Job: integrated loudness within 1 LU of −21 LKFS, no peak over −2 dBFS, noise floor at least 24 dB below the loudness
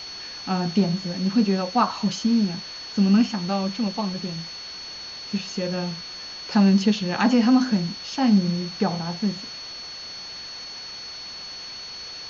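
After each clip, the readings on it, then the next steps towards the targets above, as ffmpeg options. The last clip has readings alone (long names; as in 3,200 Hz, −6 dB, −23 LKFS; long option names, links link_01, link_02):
interfering tone 4,400 Hz; level of the tone −35 dBFS; background noise floor −37 dBFS; target noise floor −49 dBFS; integrated loudness −24.5 LKFS; sample peak −7.5 dBFS; target loudness −21.0 LKFS
→ -af "bandreject=frequency=4400:width=30"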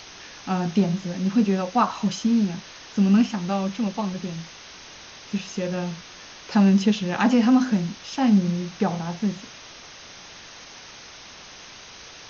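interfering tone none found; background noise floor −44 dBFS; target noise floor −47 dBFS
→ -af "afftdn=noise_reduction=6:noise_floor=-44"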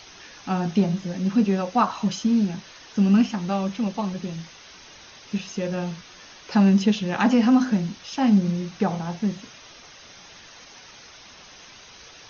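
background noise floor −47 dBFS; integrated loudness −23.0 LKFS; sample peak −8.0 dBFS; target loudness −21.0 LKFS
→ -af "volume=2dB"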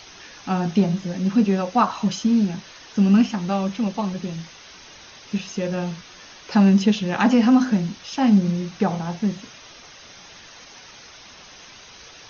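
integrated loudness −21.0 LKFS; sample peak −6.0 dBFS; background noise floor −45 dBFS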